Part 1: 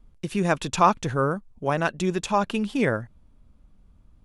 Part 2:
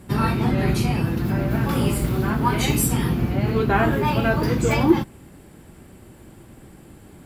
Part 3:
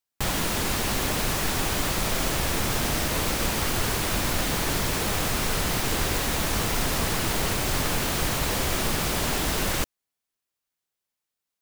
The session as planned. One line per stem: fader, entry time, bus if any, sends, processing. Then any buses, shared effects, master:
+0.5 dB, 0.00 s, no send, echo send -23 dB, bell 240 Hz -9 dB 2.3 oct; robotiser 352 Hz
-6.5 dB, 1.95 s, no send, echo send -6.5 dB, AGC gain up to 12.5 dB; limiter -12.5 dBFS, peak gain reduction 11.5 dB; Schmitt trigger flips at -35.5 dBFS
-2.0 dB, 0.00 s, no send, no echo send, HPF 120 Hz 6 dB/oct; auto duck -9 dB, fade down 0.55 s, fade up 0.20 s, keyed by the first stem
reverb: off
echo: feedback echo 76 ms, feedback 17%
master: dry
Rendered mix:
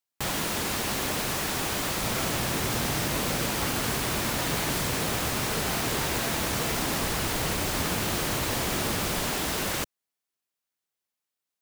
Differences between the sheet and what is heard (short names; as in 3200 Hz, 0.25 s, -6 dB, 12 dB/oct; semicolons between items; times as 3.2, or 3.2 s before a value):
stem 1: muted; stem 2 -6.5 dB -> -14.0 dB